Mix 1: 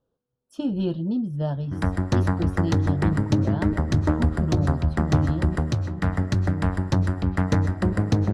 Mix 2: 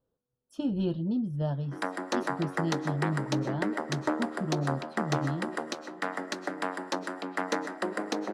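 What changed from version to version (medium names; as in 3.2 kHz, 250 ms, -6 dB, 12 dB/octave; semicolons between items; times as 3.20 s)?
speech -4.0 dB; background: add Bessel high-pass 440 Hz, order 8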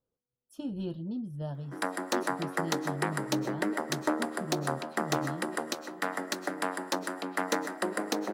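speech -6.5 dB; master: remove distance through air 63 m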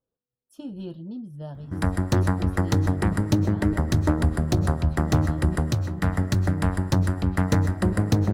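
background: remove Bessel high-pass 440 Hz, order 8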